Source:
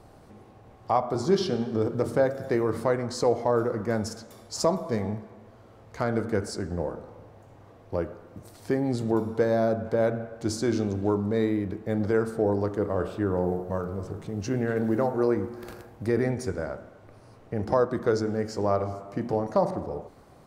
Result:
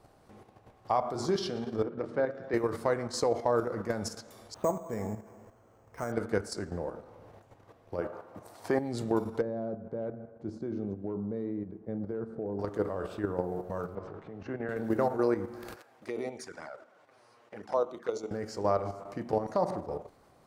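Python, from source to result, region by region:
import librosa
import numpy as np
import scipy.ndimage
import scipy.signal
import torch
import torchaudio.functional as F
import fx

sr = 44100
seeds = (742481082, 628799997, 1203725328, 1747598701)

y = fx.chain(x, sr, fx.bandpass_edges(low_hz=160.0, high_hz=2600.0),
    fx.dynamic_eq(hz=800.0, q=0.89, threshold_db=-35.0, ratio=4.0, max_db=-5), at=(1.82, 2.54))
y = fx.chain(y, sr, fx.resample_bad(factor=6, down='filtered', up='hold'),
    fx.high_shelf(hz=3000.0, db=-8.0), at=(4.54, 6.12))
y = fx.chain(y, sr, fx.highpass(hz=94.0, slope=12),
    fx.peak_eq(hz=880.0, db=10.0, octaves=1.8), at=(8.01, 8.79))
y = fx.chain(y, sr, fx.peak_eq(hz=270.0, db=-4.0, octaves=0.43),
    fx.overload_stage(gain_db=15.5),
    fx.bandpass_q(hz=210.0, q=0.84), at=(9.41, 12.59))
y = fx.chain(y, sr, fx.lowpass(hz=1700.0, slope=12),
    fx.low_shelf(hz=420.0, db=-8.0),
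    fx.band_squash(depth_pct=70), at=(13.95, 14.69))
y = fx.chain(y, sr, fx.env_flanger(rest_ms=10.2, full_db=-22.5),
    fx.weighting(curve='A'), at=(15.76, 18.31))
y = fx.low_shelf(y, sr, hz=370.0, db=-5.5)
y = fx.level_steps(y, sr, step_db=9)
y = y * 10.0 ** (1.5 / 20.0)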